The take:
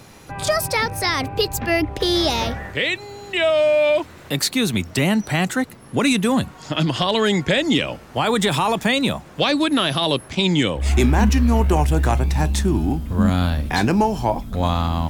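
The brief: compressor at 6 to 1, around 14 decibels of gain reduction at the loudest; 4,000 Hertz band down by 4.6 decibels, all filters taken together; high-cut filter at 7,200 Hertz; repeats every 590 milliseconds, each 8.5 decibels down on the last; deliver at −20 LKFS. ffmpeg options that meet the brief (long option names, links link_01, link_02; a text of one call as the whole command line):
ffmpeg -i in.wav -af "lowpass=7200,equalizer=frequency=4000:width_type=o:gain=-5.5,acompressor=threshold=-28dB:ratio=6,aecho=1:1:590|1180|1770|2360:0.376|0.143|0.0543|0.0206,volume=11dB" out.wav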